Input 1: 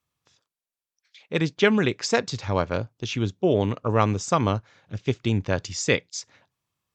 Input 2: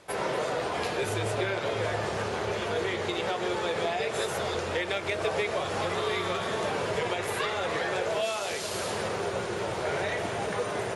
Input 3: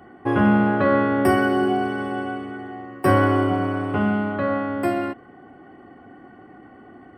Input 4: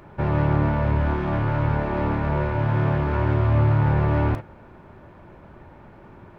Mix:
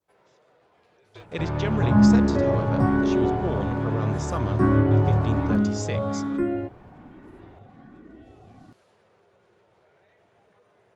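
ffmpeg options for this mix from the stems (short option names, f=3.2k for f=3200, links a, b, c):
-filter_complex "[0:a]alimiter=limit=-12dB:level=0:latency=1,volume=-6.5dB,asplit=2[a][b];[1:a]highshelf=f=5.2k:g=-10.5,alimiter=level_in=0.5dB:limit=-24dB:level=0:latency=1:release=52,volume=-0.5dB,volume=-10.5dB[c];[2:a]aemphasis=mode=reproduction:type=riaa,asplit=2[d][e];[e]afreqshift=1.2[f];[d][f]amix=inputs=2:normalize=1,adelay=1550,volume=-5dB[g];[3:a]adelay=1200,volume=-6dB[h];[b]apad=whole_len=483211[i];[c][i]sidechaingate=range=-18dB:threshold=-58dB:ratio=16:detection=peak[j];[a][j][g][h]amix=inputs=4:normalize=0,adynamicequalizer=threshold=0.00562:dfrequency=2400:dqfactor=1.2:tfrequency=2400:tqfactor=1.2:attack=5:release=100:ratio=0.375:range=2.5:mode=cutabove:tftype=bell"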